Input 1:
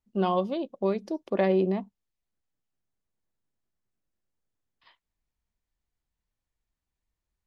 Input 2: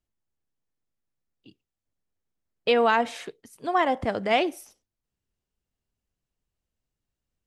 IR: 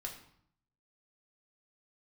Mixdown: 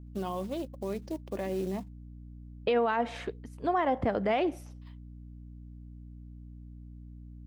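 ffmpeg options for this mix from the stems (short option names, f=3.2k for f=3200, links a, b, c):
-filter_complex "[0:a]alimiter=limit=-21dB:level=0:latency=1:release=21,acrusher=bits=5:mode=log:mix=0:aa=0.000001,volume=-4.5dB[a];[1:a]aeval=exprs='val(0)+0.00398*(sin(2*PI*60*n/s)+sin(2*PI*2*60*n/s)/2+sin(2*PI*3*60*n/s)/3+sin(2*PI*4*60*n/s)/4+sin(2*PI*5*60*n/s)/5)':c=same,lowpass=f=1.5k:p=1,volume=3dB[b];[a][b]amix=inputs=2:normalize=0,alimiter=limit=-19dB:level=0:latency=1:release=164"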